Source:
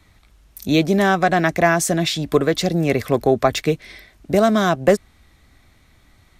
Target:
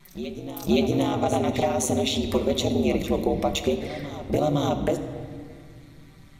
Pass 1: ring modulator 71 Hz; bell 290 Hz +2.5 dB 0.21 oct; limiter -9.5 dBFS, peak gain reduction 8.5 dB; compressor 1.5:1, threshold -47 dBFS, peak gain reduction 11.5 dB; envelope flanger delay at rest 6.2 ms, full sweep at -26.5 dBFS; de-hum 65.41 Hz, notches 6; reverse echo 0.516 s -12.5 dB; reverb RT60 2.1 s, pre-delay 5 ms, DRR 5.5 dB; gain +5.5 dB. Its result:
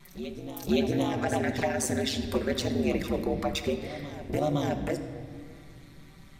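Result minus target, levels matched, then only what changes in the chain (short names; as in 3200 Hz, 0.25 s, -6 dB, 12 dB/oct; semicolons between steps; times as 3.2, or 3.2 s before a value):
compressor: peak gain reduction +4 dB
change: compressor 1.5:1, threshold -35 dBFS, peak gain reduction 7.5 dB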